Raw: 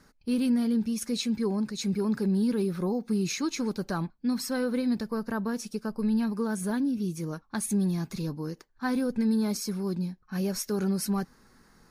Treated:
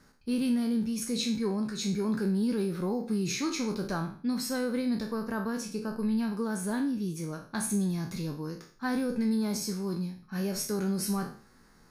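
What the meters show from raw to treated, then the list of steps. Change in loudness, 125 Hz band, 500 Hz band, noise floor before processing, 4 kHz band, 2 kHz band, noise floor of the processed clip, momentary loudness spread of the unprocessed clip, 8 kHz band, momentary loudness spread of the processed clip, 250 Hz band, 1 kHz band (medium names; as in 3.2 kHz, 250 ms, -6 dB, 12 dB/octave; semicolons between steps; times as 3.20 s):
-2.0 dB, -2.0 dB, -1.5 dB, -63 dBFS, +0.5 dB, 0.0 dB, -59 dBFS, 8 LU, 0.0 dB, 7 LU, -2.0 dB, -0.5 dB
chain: spectral sustain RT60 0.45 s; trim -2.5 dB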